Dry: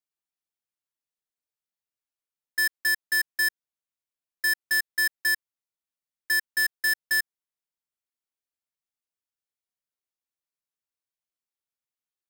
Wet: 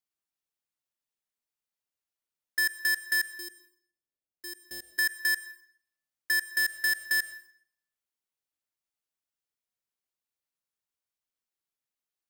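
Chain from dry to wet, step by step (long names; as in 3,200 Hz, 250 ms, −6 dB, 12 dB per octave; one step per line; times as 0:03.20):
0:03.27–0:04.99: drawn EQ curve 590 Hz 0 dB, 1,500 Hz −24 dB, 3,000 Hz −12 dB
downward compressor, threshold −25 dBFS, peak gain reduction 2.5 dB
dense smooth reverb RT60 0.64 s, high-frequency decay 0.85×, pre-delay 85 ms, DRR 14 dB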